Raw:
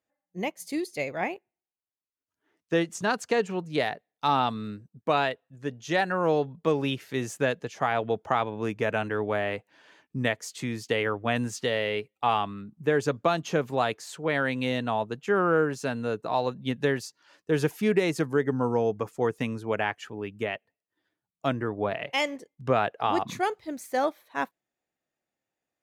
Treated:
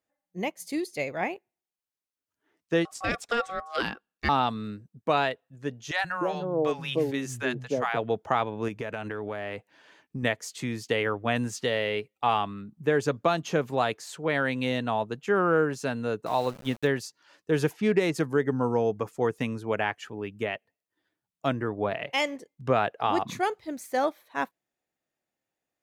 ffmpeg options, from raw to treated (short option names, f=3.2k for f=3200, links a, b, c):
-filter_complex "[0:a]asettb=1/sr,asplit=3[a][b][c];[a]atrim=end=2.854[d];[b]atrim=start=2.85:end=4.29,asetpts=PTS-STARTPTS,afade=t=in:d=0.004:c=qsin,afade=t=out:st=1.436:d=0.004:c=qsin,aeval=exprs='val(0)*sin(2*PI*940*n/s)':c=same[e];[c]atrim=start=4.286[f];[d][e]acrossfade=d=0.004:c1=hsin:c2=qsin[g];[g][f]acrossfade=d=0.004:c1=qsin:c2=hsin,asettb=1/sr,asplit=3[h][i][j];[h]atrim=end=5.914[k];[i]atrim=start=5.91:end=7.97,asetpts=PTS-STARTPTS,afade=t=in:d=0.004:c=qsin,afade=t=out:st=2.056:d=0.004:c=qsin,acrossover=split=160|730[l][m][n];[l]adelay=130[o];[m]adelay=300[p];[o][p][n]amix=inputs=3:normalize=0,atrim=end_sample=90846[q];[j]atrim=start=7.966[r];[k][q]acrossfade=d=0.004:c1=hsin:c2=qsin[s];[s][r]acrossfade=d=0.004:c1=qsin:c2=hsin,asettb=1/sr,asplit=3[t][u][v];[t]atrim=end=8.684[w];[u]atrim=start=8.68:end=10.23,asetpts=PTS-STARTPTS,afade=t=in:d=0.004:c=qsin,afade=t=out:st=1.546:d=0.004:c=qsin,acompressor=threshold=-29dB:ratio=6:attack=3.2:release=140:knee=1:detection=peak[x];[v]atrim=start=10.226[y];[w][x]acrossfade=d=0.004:c1=hsin:c2=qsin[z];[z][y]acrossfade=d=0.004:c1=qsin:c2=hsin,asettb=1/sr,asplit=3[aa][ab][ac];[aa]atrim=end=16.264[ad];[ab]atrim=start=16.26:end=16.87,asetpts=PTS-STARTPTS,afade=t=in:d=0.004:c=qsin,afade=t=out:st=0.606:d=0.004:c=qsin,aeval=exprs='val(0)*gte(abs(val(0)),0.01)':c=same[ae];[ac]atrim=start=16.866[af];[ad][ae]acrossfade=d=0.004:c1=hsin:c2=qsin[ag];[ag][af]acrossfade=d=0.004:c1=qsin:c2=hsin,asplit=3[ah][ai][aj];[ah]afade=t=out:st=17.72:d=0.02[ak];[ai]adynamicsmooth=sensitivity=5:basefreq=4.6k,afade=t=in:st=17.72:d=0.02,afade=t=out:st=18.13:d=0.02[al];[aj]afade=t=in:st=18.13:d=0.02[am];[ak][al][am]amix=inputs=3:normalize=0"